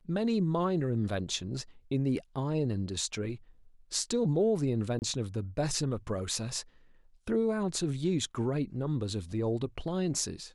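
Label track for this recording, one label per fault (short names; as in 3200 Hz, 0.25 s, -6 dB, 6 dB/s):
4.990000	5.020000	gap 29 ms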